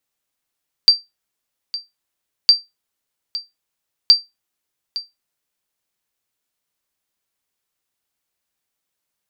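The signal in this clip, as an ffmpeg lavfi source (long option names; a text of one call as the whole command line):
ffmpeg -f lavfi -i "aevalsrc='0.891*(sin(2*PI*4690*mod(t,1.61))*exp(-6.91*mod(t,1.61)/0.19)+0.158*sin(2*PI*4690*max(mod(t,1.61)-0.86,0))*exp(-6.91*max(mod(t,1.61)-0.86,0)/0.19))':duration=4.83:sample_rate=44100" out.wav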